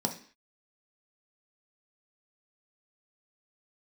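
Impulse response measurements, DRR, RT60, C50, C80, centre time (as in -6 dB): 2.5 dB, 0.45 s, 11.0 dB, 16.0 dB, 12 ms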